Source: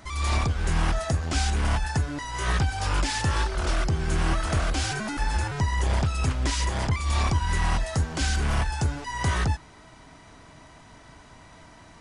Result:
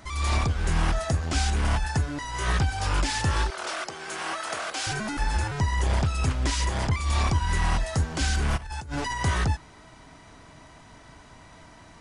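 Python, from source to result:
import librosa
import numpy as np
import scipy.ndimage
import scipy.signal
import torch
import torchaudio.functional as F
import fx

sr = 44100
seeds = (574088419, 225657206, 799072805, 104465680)

y = fx.highpass(x, sr, hz=550.0, slope=12, at=(3.5, 4.87))
y = fx.over_compress(y, sr, threshold_db=-35.0, ratio=-1.0, at=(8.56, 9.15), fade=0.02)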